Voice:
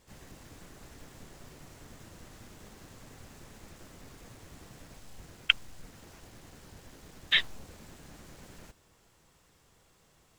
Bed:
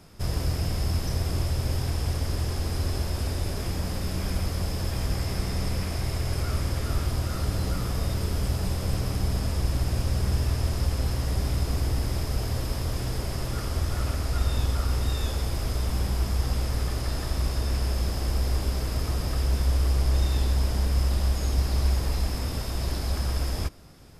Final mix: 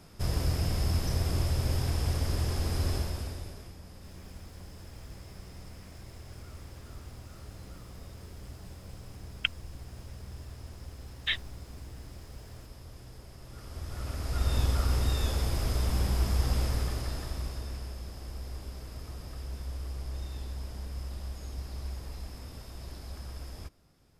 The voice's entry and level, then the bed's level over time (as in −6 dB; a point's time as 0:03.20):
3.95 s, −5.5 dB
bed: 0:02.94 −2 dB
0:03.77 −19 dB
0:13.39 −19 dB
0:14.56 −1.5 dB
0:16.64 −1.5 dB
0:18.00 −14.5 dB